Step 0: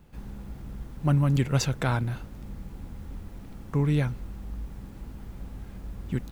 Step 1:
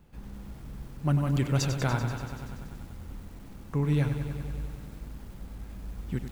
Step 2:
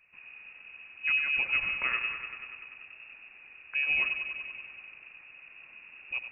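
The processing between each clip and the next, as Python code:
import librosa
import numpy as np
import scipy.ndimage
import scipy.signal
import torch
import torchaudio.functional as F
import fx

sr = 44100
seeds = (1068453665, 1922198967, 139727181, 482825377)

y1 = fx.echo_crushed(x, sr, ms=96, feedback_pct=80, bits=8, wet_db=-9)
y1 = F.gain(torch.from_numpy(y1), -3.0).numpy()
y2 = scipy.signal.sosfilt(scipy.signal.butter(4, 93.0, 'highpass', fs=sr, output='sos'), y1)
y2 = fx.freq_invert(y2, sr, carrier_hz=2700)
y2 = F.gain(torch.from_numpy(y2), -3.0).numpy()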